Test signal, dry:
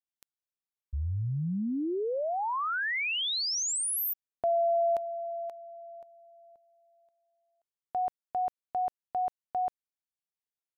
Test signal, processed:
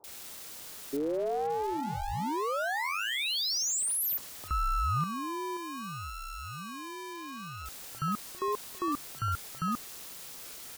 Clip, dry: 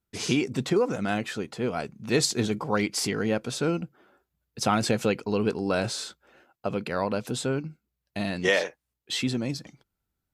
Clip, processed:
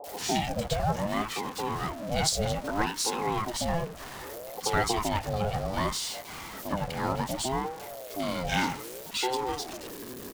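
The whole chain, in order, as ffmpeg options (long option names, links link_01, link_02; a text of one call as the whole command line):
ffmpeg -i in.wav -filter_complex "[0:a]aeval=exprs='val(0)+0.5*0.0282*sgn(val(0))':channel_layout=same,acrossover=split=370|2000[link_01][link_02][link_03];[link_03]adelay=40[link_04];[link_02]adelay=70[link_05];[link_01][link_05][link_04]amix=inputs=3:normalize=0,aeval=exprs='val(0)*sin(2*PI*480*n/s+480*0.35/0.64*sin(2*PI*0.64*n/s))':channel_layout=same" out.wav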